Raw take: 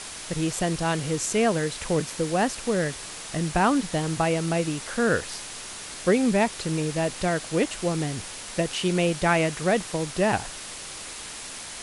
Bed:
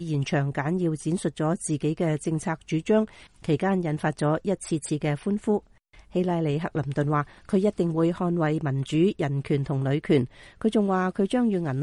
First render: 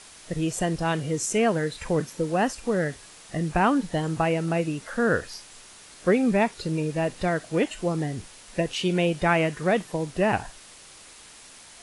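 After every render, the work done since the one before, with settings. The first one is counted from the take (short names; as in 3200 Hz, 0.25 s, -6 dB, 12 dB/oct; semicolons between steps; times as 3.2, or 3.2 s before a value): noise print and reduce 10 dB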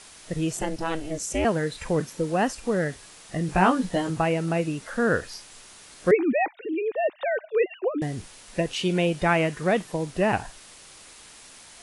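0.57–1.45 ring modulator 160 Hz; 3.47–4.1 doubler 16 ms -3 dB; 6.11–8.02 sine-wave speech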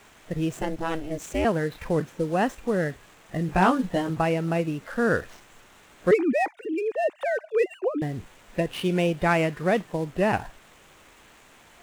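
median filter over 9 samples; hard clip -10.5 dBFS, distortion -34 dB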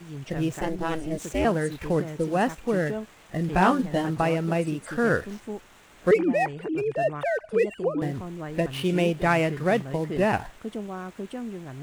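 add bed -11.5 dB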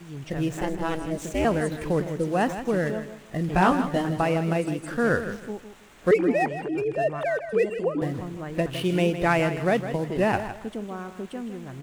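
feedback echo 0.159 s, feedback 26%, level -11 dB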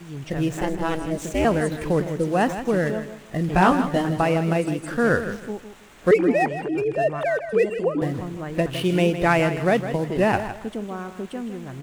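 gain +3 dB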